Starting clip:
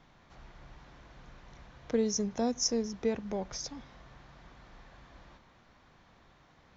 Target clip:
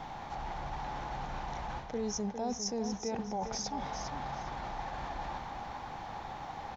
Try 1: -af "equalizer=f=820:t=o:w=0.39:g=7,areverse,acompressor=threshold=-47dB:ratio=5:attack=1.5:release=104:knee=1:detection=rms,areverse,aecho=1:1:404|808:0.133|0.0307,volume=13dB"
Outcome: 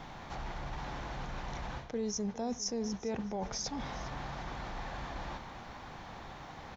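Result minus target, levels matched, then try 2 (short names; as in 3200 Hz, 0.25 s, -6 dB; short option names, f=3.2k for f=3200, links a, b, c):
echo-to-direct -9.5 dB; 1000 Hz band -4.0 dB
-af "equalizer=f=820:t=o:w=0.39:g=17,areverse,acompressor=threshold=-47dB:ratio=5:attack=1.5:release=104:knee=1:detection=rms,areverse,aecho=1:1:404|808|1212:0.398|0.0916|0.0211,volume=13dB"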